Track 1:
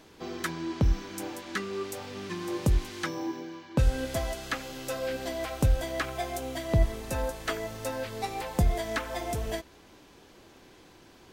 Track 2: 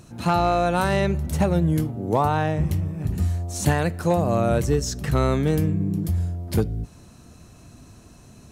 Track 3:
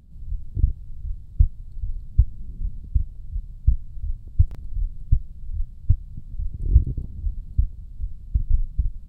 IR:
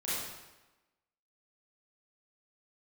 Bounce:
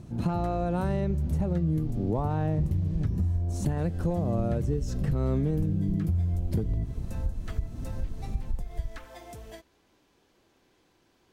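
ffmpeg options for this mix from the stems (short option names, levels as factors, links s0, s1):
-filter_complex "[0:a]volume=0.251[s0];[1:a]tiltshelf=f=740:g=8.5,volume=0.596[s1];[2:a]alimiter=limit=0.2:level=0:latency=1:release=477,dynaudnorm=f=470:g=5:m=3.76,volume=0.224[s2];[s1][s2]amix=inputs=2:normalize=0,dynaudnorm=f=100:g=3:m=2.24,alimiter=limit=0.398:level=0:latency=1:release=281,volume=1[s3];[s0][s3]amix=inputs=2:normalize=0,acompressor=threshold=0.0355:ratio=2.5"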